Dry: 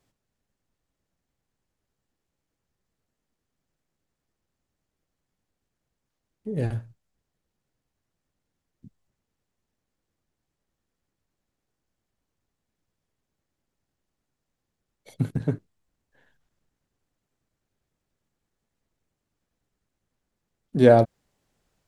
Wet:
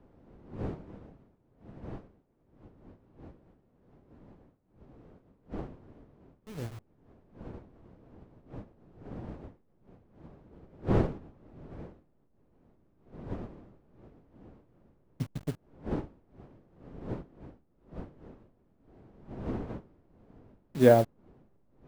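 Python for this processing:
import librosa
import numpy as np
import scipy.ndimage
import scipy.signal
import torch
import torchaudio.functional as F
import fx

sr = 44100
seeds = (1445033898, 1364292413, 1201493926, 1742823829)

y = fx.delta_hold(x, sr, step_db=-28.5)
y = fx.dmg_wind(y, sr, seeds[0], corner_hz=330.0, level_db=-33.0)
y = fx.upward_expand(y, sr, threshold_db=-37.0, expansion=1.5)
y = y * librosa.db_to_amplitude(-3.5)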